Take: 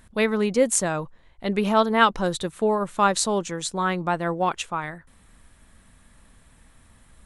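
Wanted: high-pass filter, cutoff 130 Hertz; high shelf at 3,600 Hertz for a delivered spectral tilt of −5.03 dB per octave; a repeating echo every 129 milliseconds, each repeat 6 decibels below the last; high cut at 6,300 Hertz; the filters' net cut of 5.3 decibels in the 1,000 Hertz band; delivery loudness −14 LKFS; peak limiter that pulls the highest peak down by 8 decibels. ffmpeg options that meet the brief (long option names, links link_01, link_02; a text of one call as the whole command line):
ffmpeg -i in.wav -af "highpass=130,lowpass=6300,equalizer=frequency=1000:width_type=o:gain=-6.5,highshelf=frequency=3600:gain=-4.5,alimiter=limit=-16.5dB:level=0:latency=1,aecho=1:1:129|258|387|516|645|774:0.501|0.251|0.125|0.0626|0.0313|0.0157,volume=13dB" out.wav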